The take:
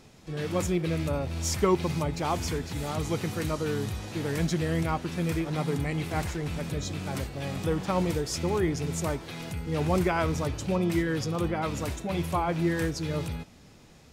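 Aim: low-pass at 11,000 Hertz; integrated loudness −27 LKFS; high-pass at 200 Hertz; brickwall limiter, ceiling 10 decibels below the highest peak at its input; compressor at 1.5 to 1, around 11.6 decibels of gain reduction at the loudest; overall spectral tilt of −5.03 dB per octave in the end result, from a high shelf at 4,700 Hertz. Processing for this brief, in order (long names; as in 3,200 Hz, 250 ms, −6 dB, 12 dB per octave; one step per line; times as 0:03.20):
high-pass filter 200 Hz
low-pass filter 11,000 Hz
high-shelf EQ 4,700 Hz −5.5 dB
downward compressor 1.5 to 1, threshold −52 dBFS
level +16.5 dB
brickwall limiter −16.5 dBFS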